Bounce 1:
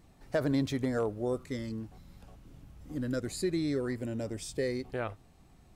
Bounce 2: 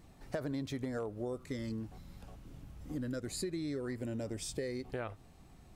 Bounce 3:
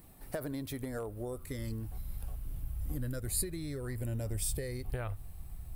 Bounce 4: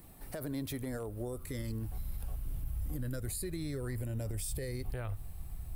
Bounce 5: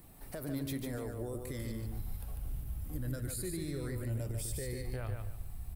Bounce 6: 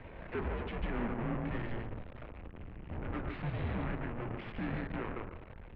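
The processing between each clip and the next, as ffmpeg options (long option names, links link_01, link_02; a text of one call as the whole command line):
ffmpeg -i in.wav -af "acompressor=threshold=-37dB:ratio=5,volume=1.5dB" out.wav
ffmpeg -i in.wav -af "asubboost=boost=10:cutoff=84,aexciter=amount=7.8:drive=5.3:freq=9100" out.wav
ffmpeg -i in.wav -filter_complex "[0:a]alimiter=level_in=7dB:limit=-24dB:level=0:latency=1:release=35,volume=-7dB,acrossover=split=360|3000[link_01][link_02][link_03];[link_02]acompressor=threshold=-43dB:ratio=6[link_04];[link_01][link_04][link_03]amix=inputs=3:normalize=0,volume=2dB" out.wav
ffmpeg -i in.wav -af "flanger=delay=6.4:depth=8.4:regen=88:speed=0.94:shape=triangular,aecho=1:1:146|292|438:0.562|0.146|0.038,volume=3dB" out.wav
ffmpeg -i in.wav -af "aeval=exprs='(tanh(282*val(0)+0.5)-tanh(0.5))/282':channel_layout=same,highpass=frequency=190:width_type=q:width=0.5412,highpass=frequency=190:width_type=q:width=1.307,lowpass=frequency=2900:width_type=q:width=0.5176,lowpass=frequency=2900:width_type=q:width=0.7071,lowpass=frequency=2900:width_type=q:width=1.932,afreqshift=-220,bandreject=frequency=53.43:width_type=h:width=4,bandreject=frequency=106.86:width_type=h:width=4,bandreject=frequency=160.29:width_type=h:width=4,bandreject=frequency=213.72:width_type=h:width=4,bandreject=frequency=267.15:width_type=h:width=4,bandreject=frequency=320.58:width_type=h:width=4,bandreject=frequency=374.01:width_type=h:width=4,bandreject=frequency=427.44:width_type=h:width=4,bandreject=frequency=480.87:width_type=h:width=4,bandreject=frequency=534.3:width_type=h:width=4,bandreject=frequency=587.73:width_type=h:width=4,bandreject=frequency=641.16:width_type=h:width=4,bandreject=frequency=694.59:width_type=h:width=4,bandreject=frequency=748.02:width_type=h:width=4,bandreject=frequency=801.45:width_type=h:width=4,bandreject=frequency=854.88:width_type=h:width=4,bandreject=frequency=908.31:width_type=h:width=4,bandreject=frequency=961.74:width_type=h:width=4,bandreject=frequency=1015.17:width_type=h:width=4,bandreject=frequency=1068.6:width_type=h:width=4,bandreject=frequency=1122.03:width_type=h:width=4,bandreject=frequency=1175.46:width_type=h:width=4,bandreject=frequency=1228.89:width_type=h:width=4,bandreject=frequency=1282.32:width_type=h:width=4,bandreject=frequency=1335.75:width_type=h:width=4,bandreject=frequency=1389.18:width_type=h:width=4,bandreject=frequency=1442.61:width_type=h:width=4,bandreject=frequency=1496.04:width_type=h:width=4,bandreject=frequency=1549.47:width_type=h:width=4,bandreject=frequency=1602.9:width_type=h:width=4,bandreject=frequency=1656.33:width_type=h:width=4,bandreject=frequency=1709.76:width_type=h:width=4,bandreject=frequency=1763.19:width_type=h:width=4,volume=18dB" out.wav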